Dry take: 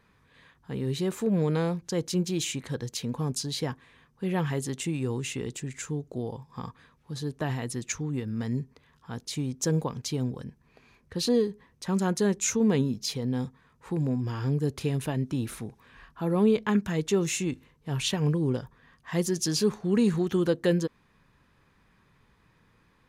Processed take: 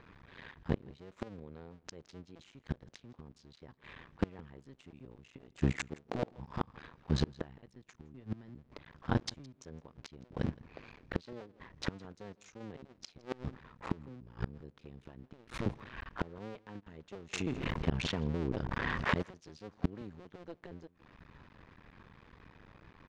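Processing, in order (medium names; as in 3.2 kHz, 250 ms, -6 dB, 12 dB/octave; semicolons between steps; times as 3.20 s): cycle switcher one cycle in 2, muted; 5.72–6.37 s: bass shelf 140 Hz -10.5 dB; inverted gate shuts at -26 dBFS, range -30 dB; distance through air 160 m; delay 165 ms -23 dB; 17.33–19.23 s: level flattener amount 70%; trim +9.5 dB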